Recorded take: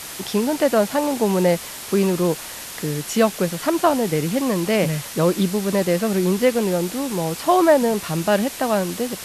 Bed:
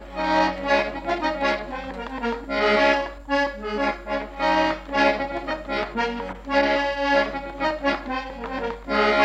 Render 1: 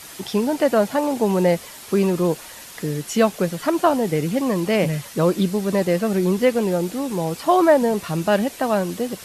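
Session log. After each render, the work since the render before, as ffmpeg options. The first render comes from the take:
ffmpeg -i in.wav -af "afftdn=noise_reduction=7:noise_floor=-34" out.wav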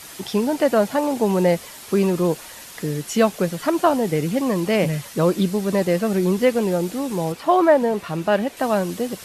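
ffmpeg -i in.wav -filter_complex "[0:a]asettb=1/sr,asplit=3[link_01][link_02][link_03];[link_01]atrim=end=7.324[link_04];[link_02]atrim=start=7.32:end=8.57,asetpts=PTS-STARTPTS,afade=type=in:duration=0.004:curve=qsin,afade=type=out:start_time=1.246:duration=0.004:curve=qsin,bass=frequency=250:gain=-4,treble=frequency=4000:gain=-8[link_05];[link_03]atrim=start=8.566[link_06];[link_04][link_05]acrossfade=duration=0.004:curve1=hsin:curve2=qsin[link_07];[link_07][link_06]acrossfade=duration=0.004:curve1=qsin:curve2=hsin" out.wav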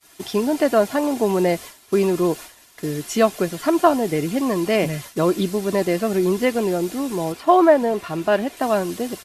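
ffmpeg -i in.wav -af "agate=range=-33dB:threshold=-30dB:ratio=3:detection=peak,aecho=1:1:2.9:0.37" out.wav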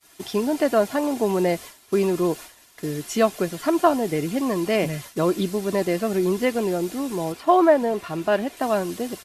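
ffmpeg -i in.wav -af "volume=-2.5dB" out.wav

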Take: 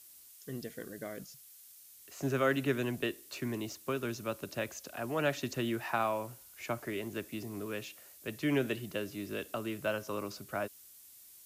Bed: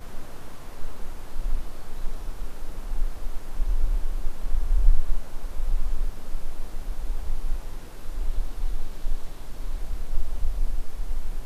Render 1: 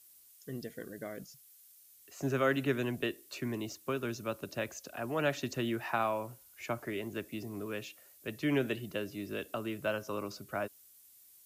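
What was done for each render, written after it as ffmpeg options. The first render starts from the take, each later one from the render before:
ffmpeg -i in.wav -af "afftdn=noise_reduction=6:noise_floor=-56" out.wav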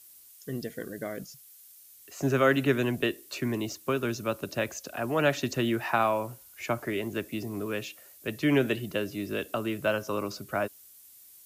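ffmpeg -i in.wav -af "volume=6.5dB" out.wav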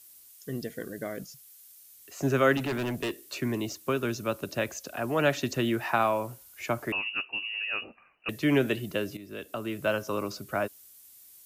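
ffmpeg -i in.wav -filter_complex "[0:a]asettb=1/sr,asplit=3[link_01][link_02][link_03];[link_01]atrim=end=2.574[link_04];[link_02]atrim=start=2.57:end=3.26,asetpts=PTS-STARTPTS,afade=type=in:duration=0.004:curve=qsin,afade=type=out:start_time=0.686:duration=0.004:curve=qsin,volume=27.5dB,asoftclip=hard,volume=-27.5dB[link_05];[link_03]atrim=start=3.256[link_06];[link_04][link_05]acrossfade=duration=0.004:curve1=hsin:curve2=qsin[link_07];[link_07][link_06]acrossfade=duration=0.004:curve1=qsin:curve2=hsin,asettb=1/sr,asplit=3[link_08][link_09][link_10];[link_08]atrim=end=6.924[link_11];[link_09]atrim=start=6.92:end=8.29,asetpts=PTS-STARTPTS,afade=type=in:duration=0.004:curve=qsin,afade=type=out:start_time=1.366:duration=0.004:curve=qsin,lowpass=frequency=2600:width_type=q:width=0.5098,lowpass=frequency=2600:width_type=q:width=0.6013,lowpass=frequency=2600:width_type=q:width=0.9,lowpass=frequency=2600:width_type=q:width=2.563,afreqshift=-3000[link_12];[link_10]atrim=start=8.286[link_13];[link_11][link_12]acrossfade=duration=0.004:curve1=hsin:curve2=qsin[link_14];[link_14][link_13]acrossfade=duration=0.004:curve1=qsin:curve2=hsin,asplit=2[link_15][link_16];[link_15]atrim=end=9.17,asetpts=PTS-STARTPTS,afade=type=out:start_time=9.166:duration=0.004:curve=hsin:silence=0.211349[link_17];[link_16]atrim=start=9.17,asetpts=PTS-STARTPTS,afade=type=in:duration=0.76:silence=0.211349[link_18];[link_17][link_18]concat=n=2:v=0:a=1" out.wav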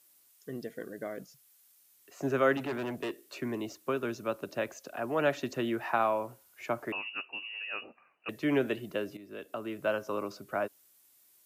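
ffmpeg -i in.wav -af "highpass=frequency=360:poles=1,highshelf=frequency=2200:gain=-11" out.wav

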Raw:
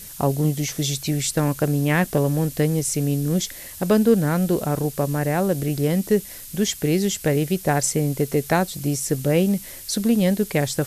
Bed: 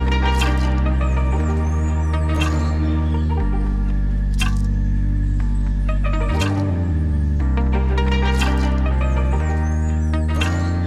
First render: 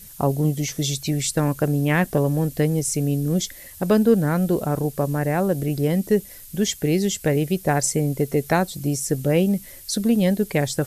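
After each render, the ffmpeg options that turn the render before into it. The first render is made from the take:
ffmpeg -i in.wav -af "afftdn=noise_reduction=7:noise_floor=-39" out.wav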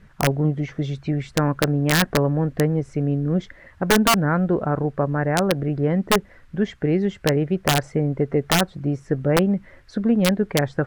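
ffmpeg -i in.wav -af "lowpass=frequency=1500:width_type=q:width=1.9,aeval=exprs='(mod(2.99*val(0)+1,2)-1)/2.99':channel_layout=same" out.wav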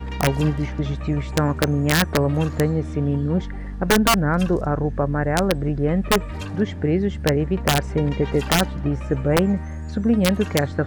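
ffmpeg -i in.wav -i bed.wav -filter_complex "[1:a]volume=-12dB[link_01];[0:a][link_01]amix=inputs=2:normalize=0" out.wav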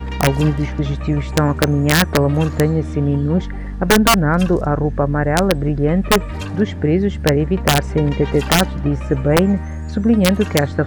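ffmpeg -i in.wav -af "volume=4.5dB" out.wav

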